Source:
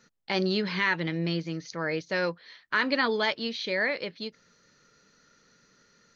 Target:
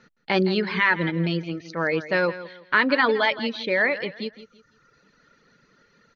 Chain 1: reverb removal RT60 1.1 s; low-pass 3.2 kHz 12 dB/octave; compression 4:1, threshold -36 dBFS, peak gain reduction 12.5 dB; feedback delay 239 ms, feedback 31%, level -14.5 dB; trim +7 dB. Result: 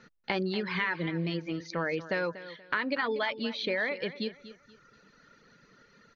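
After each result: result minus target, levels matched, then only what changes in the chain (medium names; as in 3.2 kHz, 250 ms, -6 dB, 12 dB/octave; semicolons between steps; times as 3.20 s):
compression: peak gain reduction +12.5 dB; echo 73 ms late
remove: compression 4:1, threshold -36 dBFS, peak gain reduction 12.5 dB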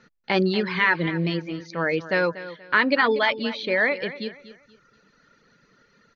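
echo 73 ms late
change: feedback delay 166 ms, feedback 31%, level -14.5 dB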